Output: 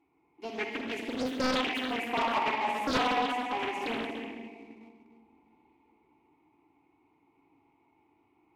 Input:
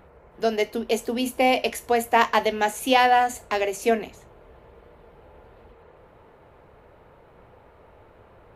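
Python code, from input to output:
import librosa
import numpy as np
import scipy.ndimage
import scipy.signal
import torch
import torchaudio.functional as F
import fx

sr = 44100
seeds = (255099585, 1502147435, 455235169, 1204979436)

p1 = fx.law_mismatch(x, sr, coded='A')
p2 = fx.high_shelf(p1, sr, hz=7100.0, db=7.0)
p3 = fx.room_shoebox(p2, sr, seeds[0], volume_m3=3100.0, walls='mixed', distance_m=3.3)
p4 = fx.quant_dither(p3, sr, seeds[1], bits=6, dither='none')
p5 = p3 + (p4 * 10.0 ** (-11.0 / 20.0))
p6 = fx.vowel_filter(p5, sr, vowel='u')
p7 = fx.high_shelf(p6, sr, hz=2700.0, db=9.5)
p8 = p7 + fx.echo_multitap(p7, sr, ms=(97, 143, 293), db=(-18.0, -10.0, -10.5), dry=0)
p9 = 10.0 ** (-19.5 / 20.0) * np.tanh(p8 / 10.0 ** (-19.5 / 20.0))
p10 = fx.doppler_dist(p9, sr, depth_ms=0.89)
y = p10 * 10.0 ** (-1.0 / 20.0)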